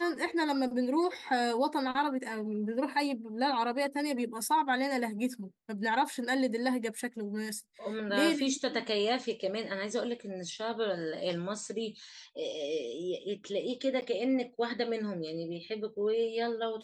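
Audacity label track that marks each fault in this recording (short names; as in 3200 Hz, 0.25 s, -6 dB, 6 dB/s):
14.010000	14.020000	gap 9.6 ms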